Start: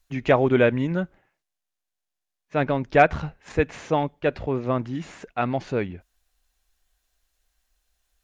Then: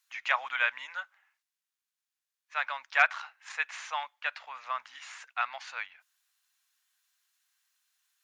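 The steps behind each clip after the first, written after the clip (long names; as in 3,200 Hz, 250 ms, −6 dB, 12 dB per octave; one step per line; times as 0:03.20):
inverse Chebyshev high-pass filter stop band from 400 Hz, stop band 50 dB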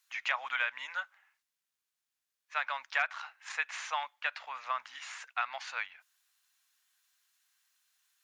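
downward compressor 4 to 1, threshold −30 dBFS, peak gain reduction 11 dB
level +1.5 dB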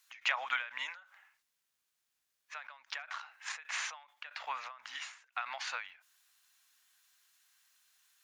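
every ending faded ahead of time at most 120 dB per second
level +4.5 dB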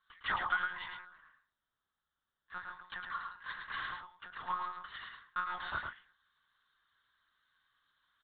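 phaser with its sweep stopped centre 490 Hz, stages 8
one-pitch LPC vocoder at 8 kHz 180 Hz
single-tap delay 108 ms −5 dB
level +4 dB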